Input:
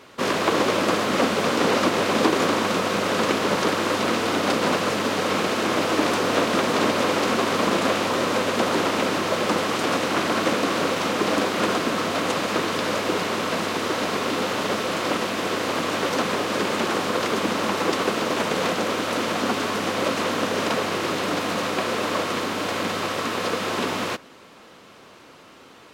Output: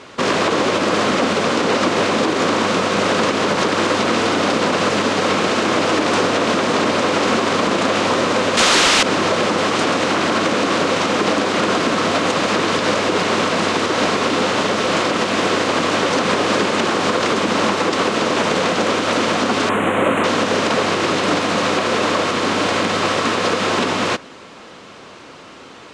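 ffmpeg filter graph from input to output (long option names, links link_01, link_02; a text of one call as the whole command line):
ffmpeg -i in.wav -filter_complex "[0:a]asettb=1/sr,asplit=3[link_01][link_02][link_03];[link_01]atrim=end=8.574[link_04];[link_02]atrim=start=8.57:end=9.03,asetpts=PTS-STARTPTS,afade=type=in:duration=0.004:curve=qsin,afade=type=out:start_time=0.456:duration=0.004:curve=qsin,tiltshelf=frequency=1400:gain=-8.5,aeval=exprs='0.376*sin(PI/2*2.82*val(0)/0.376)':channel_layout=same[link_05];[link_03]atrim=start=9.026[link_06];[link_04][link_05]acrossfade=duration=0.004:curve1=hsin:curve2=qsin[link_07];[link_07][link_06]acrossfade=duration=0.004:curve1=qsin:curve2=hsin,asettb=1/sr,asplit=3[link_08][link_09][link_10];[link_08]atrim=end=19.694[link_11];[link_09]atrim=start=19.69:end=20.24,asetpts=PTS-STARTPTS,afade=type=in:duration=0.004:curve=qsin,afade=type=out:start_time=0.546:duration=0.004:curve=qsin,volume=15.5dB,asoftclip=hard,volume=-15.5dB,asuperstop=centerf=5100:order=4:qfactor=0.84,highshelf=frequency=9400:gain=4.5[link_12];[link_10]atrim=start=20.236[link_13];[link_11][link_12]acrossfade=duration=0.004:curve1=hsin:curve2=qsin[link_14];[link_14][link_13]acrossfade=duration=0.004:curve1=qsin:curve2=hsin,lowpass=frequency=8600:width=0.5412,lowpass=frequency=8600:width=1.3066,alimiter=limit=-16dB:level=0:latency=1:release=97,volume=8.5dB" out.wav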